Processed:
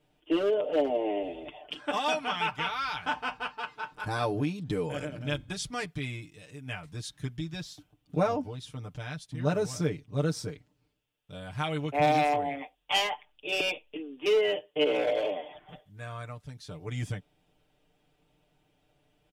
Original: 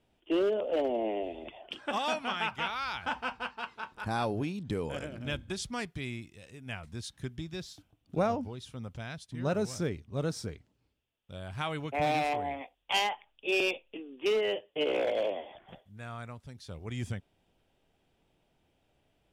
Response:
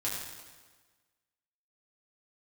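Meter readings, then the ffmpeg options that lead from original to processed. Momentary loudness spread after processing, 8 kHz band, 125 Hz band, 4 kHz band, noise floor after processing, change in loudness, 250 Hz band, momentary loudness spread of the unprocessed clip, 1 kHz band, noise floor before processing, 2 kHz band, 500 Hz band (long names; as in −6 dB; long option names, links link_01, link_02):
15 LU, +2.5 dB, +4.0 dB, +3.0 dB, −72 dBFS, +2.5 dB, +2.5 dB, 15 LU, +3.0 dB, −74 dBFS, +2.0 dB, +2.5 dB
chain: -af "aecho=1:1:6.7:0.85"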